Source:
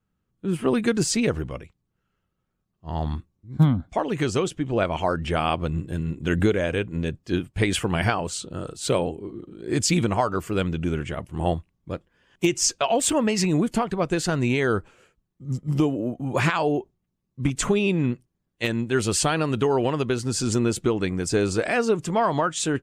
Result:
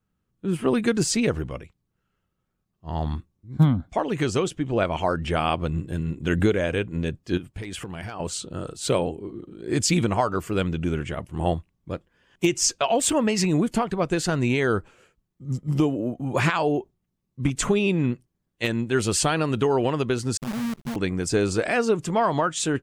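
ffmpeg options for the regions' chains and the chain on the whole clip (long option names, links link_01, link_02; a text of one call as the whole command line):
ffmpeg -i in.wav -filter_complex "[0:a]asettb=1/sr,asplit=3[link_01][link_02][link_03];[link_01]atrim=end=7.374[link_04];[link_02]atrim=start=7.37:end=8.2,asetpts=PTS-STARTPTS,afade=type=in:duration=0.004:curve=qsin,afade=type=out:start_time=0.826:duration=0.004:curve=qsin,asoftclip=type=hard:threshold=-13dB,acompressor=threshold=-30dB:ratio=10:attack=3.2:release=140:knee=1:detection=peak[link_05];[link_03]atrim=start=8.196[link_06];[link_04][link_05]acrossfade=duration=0.004:curve1=hsin:curve2=qsin[link_07];[link_07][link_06]acrossfade=duration=0.004:curve1=qsin:curve2=hsin,asettb=1/sr,asplit=3[link_08][link_09][link_10];[link_08]atrim=end=20.374[link_11];[link_09]atrim=start=20.37:end=20.96,asetpts=PTS-STARTPTS,afade=type=in:duration=0.004:curve=qsin,afade=type=out:start_time=0.586:duration=0.004:curve=qsin,asuperpass=centerf=180:order=12:qfactor=1.7,acrusher=bits=6:dc=4:mix=0:aa=0.000001[link_12];[link_10]atrim=start=20.956[link_13];[link_11][link_12]acrossfade=duration=0.004:curve1=hsin:curve2=qsin[link_14];[link_14][link_13]acrossfade=duration=0.004:curve1=qsin:curve2=hsin" out.wav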